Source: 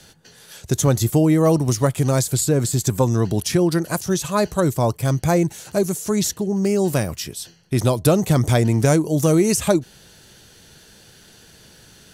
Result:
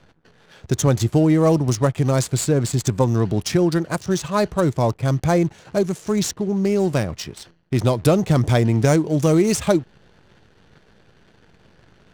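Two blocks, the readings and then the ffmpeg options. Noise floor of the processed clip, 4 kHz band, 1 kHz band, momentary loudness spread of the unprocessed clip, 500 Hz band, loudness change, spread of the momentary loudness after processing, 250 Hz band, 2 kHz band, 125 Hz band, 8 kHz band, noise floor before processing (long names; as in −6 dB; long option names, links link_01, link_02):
−55 dBFS, −1.5 dB, 0.0 dB, 6 LU, 0.0 dB, −0.5 dB, 6 LU, 0.0 dB, 0.0 dB, 0.0 dB, −4.0 dB, −49 dBFS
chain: -af "acrusher=bits=8:dc=4:mix=0:aa=0.000001,adynamicsmooth=sensitivity=5:basefreq=1900"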